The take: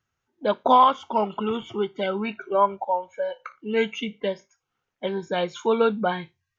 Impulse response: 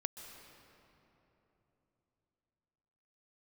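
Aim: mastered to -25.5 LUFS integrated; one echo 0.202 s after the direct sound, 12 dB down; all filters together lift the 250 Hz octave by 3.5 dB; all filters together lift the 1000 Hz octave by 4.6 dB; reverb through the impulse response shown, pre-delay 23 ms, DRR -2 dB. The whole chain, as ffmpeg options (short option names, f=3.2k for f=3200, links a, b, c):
-filter_complex "[0:a]equalizer=f=250:t=o:g=4,equalizer=f=1k:t=o:g=5,aecho=1:1:202:0.251,asplit=2[a][b];[1:a]atrim=start_sample=2205,adelay=23[c];[b][c]afir=irnorm=-1:irlink=0,volume=2.5dB[d];[a][d]amix=inputs=2:normalize=0,volume=-9dB"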